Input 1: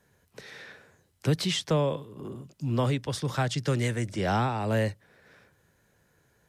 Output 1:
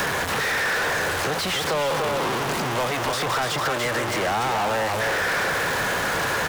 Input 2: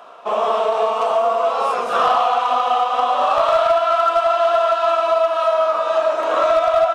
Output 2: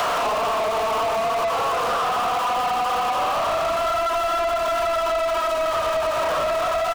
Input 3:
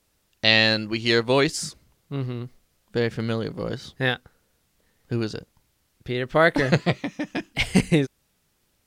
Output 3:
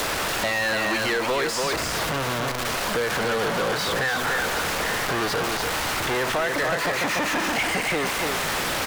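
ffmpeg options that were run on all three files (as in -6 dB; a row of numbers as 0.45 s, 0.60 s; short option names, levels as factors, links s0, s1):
-filter_complex "[0:a]aeval=exprs='val(0)+0.5*0.1*sgn(val(0))':c=same,acrossover=split=490|1900|5300[s0][s1][s2][s3];[s0]acompressor=threshold=0.0224:ratio=4[s4];[s1]acompressor=threshold=0.0631:ratio=4[s5];[s2]acompressor=threshold=0.00794:ratio=4[s6];[s3]acompressor=threshold=0.0126:ratio=4[s7];[s4][s5][s6][s7]amix=inputs=4:normalize=0,asplit=2[s8][s9];[s9]aecho=0:1:290:0.531[s10];[s8][s10]amix=inputs=2:normalize=0,acompressor=threshold=0.0631:ratio=6,asplit=2[s11][s12];[s12]highpass=f=720:p=1,volume=10,asoftclip=type=tanh:threshold=0.158[s13];[s11][s13]amix=inputs=2:normalize=0,lowpass=f=4600:p=1,volume=0.501"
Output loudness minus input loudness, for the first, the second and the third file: +5.5 LU, -5.0 LU, 0.0 LU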